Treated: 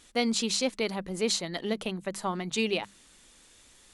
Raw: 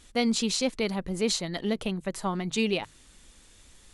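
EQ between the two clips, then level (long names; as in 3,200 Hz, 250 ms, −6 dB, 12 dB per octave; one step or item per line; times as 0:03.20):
low-shelf EQ 130 Hz −11.5 dB
mains-hum notches 50/100/150/200 Hz
0.0 dB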